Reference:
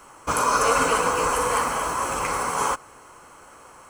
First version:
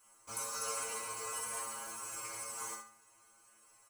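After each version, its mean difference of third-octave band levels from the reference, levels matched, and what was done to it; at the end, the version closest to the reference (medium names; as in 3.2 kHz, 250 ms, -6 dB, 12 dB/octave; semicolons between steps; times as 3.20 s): 6.5 dB: pre-emphasis filter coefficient 0.8; inharmonic resonator 110 Hz, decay 0.43 s, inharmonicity 0.002; on a send: feedback delay 68 ms, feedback 28%, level -7 dB; on the sum: trim +1 dB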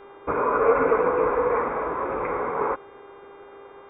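10.5 dB: steep low-pass 2.4 kHz 96 dB/octave; peaking EQ 410 Hz +12.5 dB 1.1 oct; mains buzz 400 Hz, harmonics 9, -43 dBFS -8 dB/octave; trim -5 dB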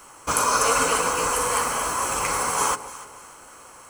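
3.0 dB: treble shelf 3 kHz +8 dB; gain riding 2 s; on a send: echo whose repeats swap between lows and highs 148 ms, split 890 Hz, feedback 59%, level -12 dB; on the sum: trim -2.5 dB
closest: third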